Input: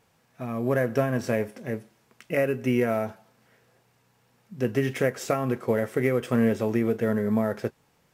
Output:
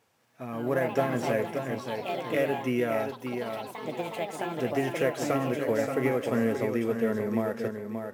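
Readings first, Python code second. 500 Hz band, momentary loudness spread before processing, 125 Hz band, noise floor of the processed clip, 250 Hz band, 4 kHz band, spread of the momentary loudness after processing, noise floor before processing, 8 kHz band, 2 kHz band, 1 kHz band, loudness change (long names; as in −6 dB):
−1.5 dB, 10 LU, −5.5 dB, −50 dBFS, −3.0 dB, +2.0 dB, 7 LU, −66 dBFS, −1.0 dB, −1.0 dB, +2.0 dB, −3.0 dB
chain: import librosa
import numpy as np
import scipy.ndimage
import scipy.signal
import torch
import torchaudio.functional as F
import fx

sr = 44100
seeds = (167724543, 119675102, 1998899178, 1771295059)

p1 = scipy.signal.sosfilt(scipy.signal.butter(2, 110.0, 'highpass', fs=sr, output='sos'), x)
p2 = fx.peak_eq(p1, sr, hz=170.0, db=-9.0, octaves=0.47)
p3 = p2 + fx.echo_feedback(p2, sr, ms=579, feedback_pct=32, wet_db=-6.5, dry=0)
p4 = fx.echo_pitch(p3, sr, ms=205, semitones=4, count=3, db_per_echo=-6.0)
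y = p4 * librosa.db_to_amplitude(-3.0)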